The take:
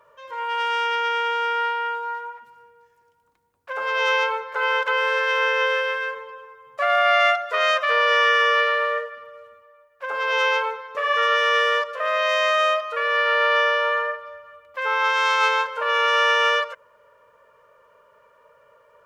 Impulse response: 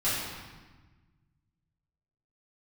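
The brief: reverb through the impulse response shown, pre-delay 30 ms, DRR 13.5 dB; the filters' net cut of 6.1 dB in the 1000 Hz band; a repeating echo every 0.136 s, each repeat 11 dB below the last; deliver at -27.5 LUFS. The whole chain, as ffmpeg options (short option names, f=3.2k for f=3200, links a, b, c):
-filter_complex "[0:a]equalizer=f=1k:t=o:g=-8,aecho=1:1:136|272|408:0.282|0.0789|0.0221,asplit=2[a][b];[1:a]atrim=start_sample=2205,adelay=30[c];[b][c]afir=irnorm=-1:irlink=0,volume=-24dB[d];[a][d]amix=inputs=2:normalize=0,volume=-5dB"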